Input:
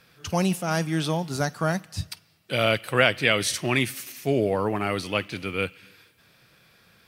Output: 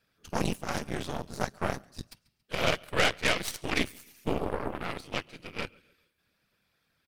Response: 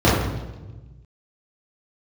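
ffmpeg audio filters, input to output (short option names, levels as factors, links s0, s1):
-af "afftfilt=real='hypot(re,im)*cos(2*PI*random(0))':imag='hypot(re,im)*sin(2*PI*random(1))':win_size=512:overlap=0.75,aecho=1:1:139|278|417:0.126|0.0491|0.0191,aeval=exprs='0.224*(cos(1*acos(clip(val(0)/0.224,-1,1)))-cos(1*PI/2))+0.0126*(cos(5*acos(clip(val(0)/0.224,-1,1)))-cos(5*PI/2))+0.0501*(cos(6*acos(clip(val(0)/0.224,-1,1)))-cos(6*PI/2))+0.0316*(cos(7*acos(clip(val(0)/0.224,-1,1)))-cos(7*PI/2))+0.01*(cos(8*acos(clip(val(0)/0.224,-1,1)))-cos(8*PI/2))':c=same"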